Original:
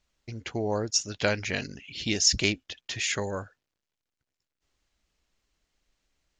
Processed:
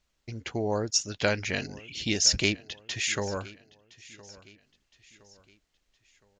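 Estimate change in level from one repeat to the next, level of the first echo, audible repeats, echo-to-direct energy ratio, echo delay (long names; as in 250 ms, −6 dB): −7.5 dB, −21.0 dB, 2, −20.0 dB, 1,015 ms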